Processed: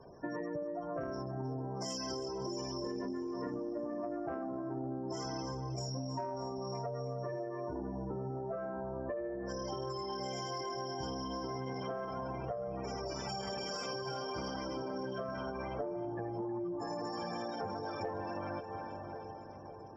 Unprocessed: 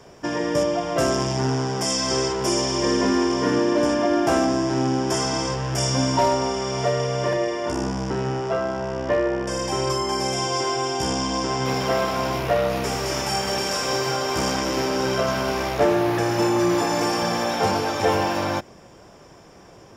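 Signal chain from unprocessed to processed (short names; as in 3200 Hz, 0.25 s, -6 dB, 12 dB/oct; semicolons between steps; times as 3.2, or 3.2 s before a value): spectral gate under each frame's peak -15 dB strong; high shelf 10000 Hz -8 dB; split-band echo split 940 Hz, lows 0.55 s, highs 0.315 s, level -14 dB; added harmonics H 2 -19 dB, 3 -27 dB, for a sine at -8.5 dBFS; compressor, threshold -31 dBFS, peak gain reduction 15 dB; gain -5.5 dB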